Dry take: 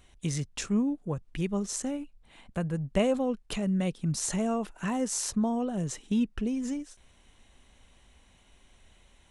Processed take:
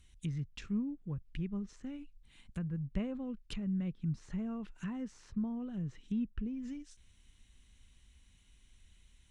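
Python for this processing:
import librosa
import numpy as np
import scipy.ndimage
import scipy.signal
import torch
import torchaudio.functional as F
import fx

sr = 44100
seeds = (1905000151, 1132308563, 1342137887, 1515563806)

y = fx.tone_stack(x, sr, knobs='6-0-2')
y = fx.env_lowpass_down(y, sr, base_hz=1500.0, full_db=-45.5)
y = F.gain(torch.from_numpy(y), 10.5).numpy()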